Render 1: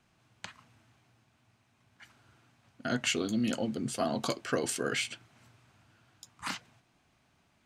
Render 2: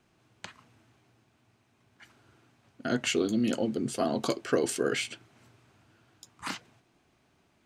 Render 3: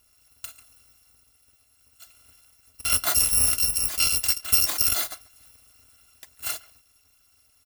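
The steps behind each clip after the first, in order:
parametric band 380 Hz +7.5 dB 0.96 octaves
samples in bit-reversed order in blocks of 256 samples; far-end echo of a speakerphone 140 ms, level −21 dB; level +6 dB

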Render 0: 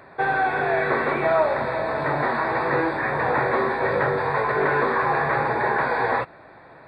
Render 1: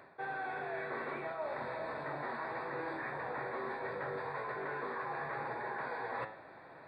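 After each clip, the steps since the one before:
low-shelf EQ 74 Hz −12 dB
hum removal 108.9 Hz, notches 37
reversed playback
downward compressor 6 to 1, threshold −31 dBFS, peak gain reduction 15.5 dB
reversed playback
level −6.5 dB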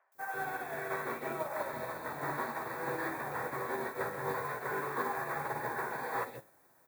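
background noise violet −56 dBFS
three-band delay without the direct sound mids, highs, lows 120/150 ms, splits 600/2,300 Hz
expander for the loud parts 2.5 to 1, over −53 dBFS
level +8.5 dB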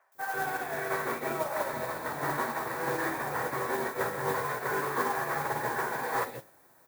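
noise that follows the level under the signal 16 dB
level +5 dB

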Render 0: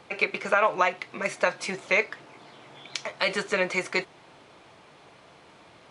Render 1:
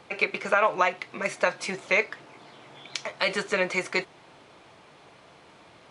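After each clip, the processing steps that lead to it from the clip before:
no processing that can be heard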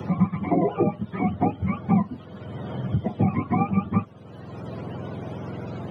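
frequency axis turned over on the octave scale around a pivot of 660 Hz
multiband upward and downward compressor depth 70%
level +2.5 dB

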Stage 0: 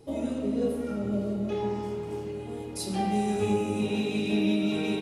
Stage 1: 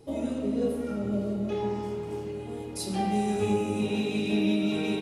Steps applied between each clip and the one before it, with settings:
no processing that can be heard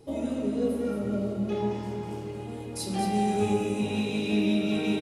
single-tap delay 223 ms −6.5 dB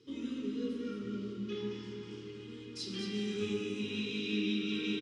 Butterworth band-reject 700 Hz, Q 0.97
loudspeaker in its box 150–6,500 Hz, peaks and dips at 170 Hz −8 dB, 680 Hz −8 dB, 3,200 Hz +9 dB, 5,300 Hz +5 dB
level −6 dB

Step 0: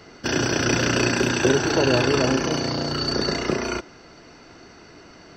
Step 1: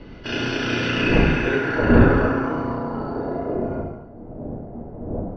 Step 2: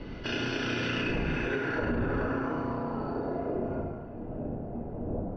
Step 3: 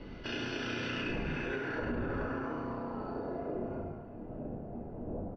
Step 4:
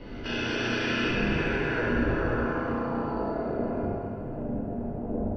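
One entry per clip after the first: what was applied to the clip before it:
wind on the microphone 240 Hz −20 dBFS; reverb whose tail is shaped and stops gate 350 ms falling, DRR −5 dB; low-pass filter sweep 3,100 Hz → 690 Hz, 0:00.83–0:03.58; level −10 dB
brickwall limiter −12 dBFS, peak gain reduction 10.5 dB; downward compressor 2 to 1, threshold −34 dBFS, peak gain reduction 9.5 dB; delay with a band-pass on its return 677 ms, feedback 58%, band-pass 1,400 Hz, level −22.5 dB
mains-hum notches 50/100/150 Hz; double-tracking delay 20 ms −12 dB; level −5.5 dB
dense smooth reverb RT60 2.1 s, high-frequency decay 1×, DRR −4.5 dB; level +3 dB

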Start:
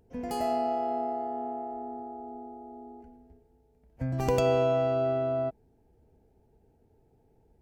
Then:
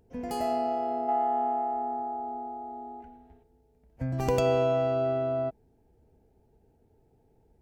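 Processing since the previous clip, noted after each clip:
gain on a spectral selection 0:01.09–0:03.43, 680–4,100 Hz +9 dB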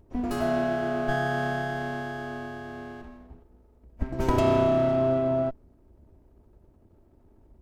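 lower of the sound and its delayed copy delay 3.1 ms
low-shelf EQ 400 Hz +11.5 dB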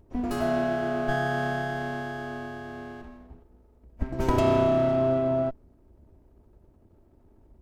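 no processing that can be heard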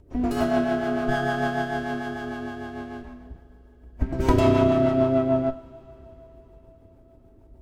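rotating-speaker cabinet horn 6.7 Hz
coupled-rooms reverb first 0.34 s, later 4.9 s, from −22 dB, DRR 9 dB
level +5 dB

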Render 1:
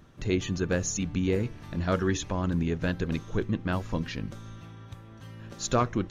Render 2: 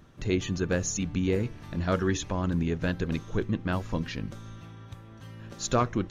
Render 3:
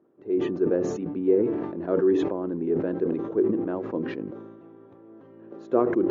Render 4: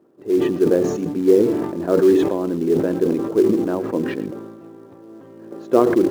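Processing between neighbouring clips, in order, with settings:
no processing that can be heard
automatic gain control gain up to 8 dB; four-pole ladder band-pass 410 Hz, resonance 55%; level that may fall only so fast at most 42 dB per second; level +5.5 dB
in parallel at −4.5 dB: floating-point word with a short mantissa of 2 bits; on the sum: single-tap delay 114 ms −18 dB; level +3 dB

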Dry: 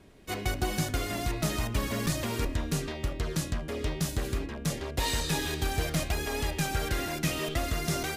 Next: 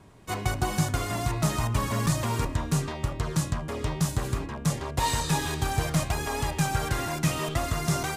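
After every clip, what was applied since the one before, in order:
graphic EQ with 10 bands 125 Hz +11 dB, 1,000 Hz +11 dB, 8,000 Hz +6 dB
level −2 dB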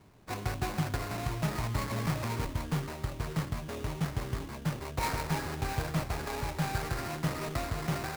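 sample-rate reduction 3,200 Hz, jitter 20%
level −6 dB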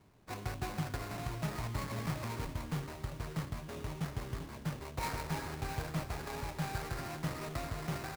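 single-tap delay 397 ms −14.5 dB
level −5.5 dB

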